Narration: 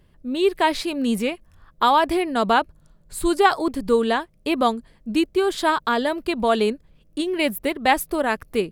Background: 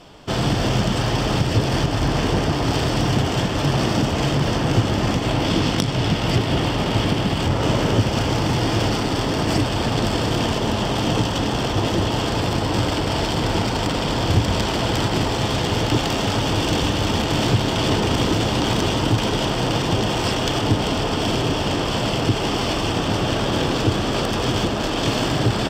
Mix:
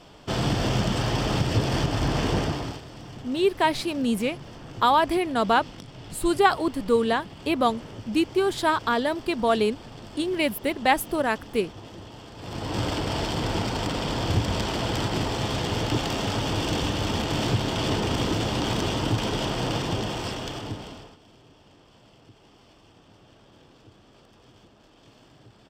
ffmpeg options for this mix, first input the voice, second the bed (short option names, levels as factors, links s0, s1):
-filter_complex "[0:a]adelay=3000,volume=0.75[s0];[1:a]volume=3.76,afade=t=out:st=2.39:d=0.42:silence=0.133352,afade=t=in:st=12.37:d=0.48:silence=0.158489,afade=t=out:st=19.71:d=1.47:silence=0.0421697[s1];[s0][s1]amix=inputs=2:normalize=0"